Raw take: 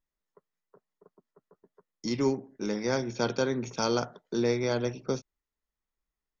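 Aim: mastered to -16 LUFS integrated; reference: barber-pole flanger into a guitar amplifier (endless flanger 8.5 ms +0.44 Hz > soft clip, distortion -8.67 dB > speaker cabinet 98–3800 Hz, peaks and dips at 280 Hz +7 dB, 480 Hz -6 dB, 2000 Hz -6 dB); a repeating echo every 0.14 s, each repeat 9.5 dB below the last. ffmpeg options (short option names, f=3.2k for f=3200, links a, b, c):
-filter_complex "[0:a]aecho=1:1:140|280|420|560:0.335|0.111|0.0365|0.012,asplit=2[a][b];[b]adelay=8.5,afreqshift=0.44[c];[a][c]amix=inputs=2:normalize=1,asoftclip=threshold=-31dB,highpass=98,equalizer=f=280:t=q:w=4:g=7,equalizer=f=480:t=q:w=4:g=-6,equalizer=f=2k:t=q:w=4:g=-6,lowpass=f=3.8k:w=0.5412,lowpass=f=3.8k:w=1.3066,volume=20.5dB"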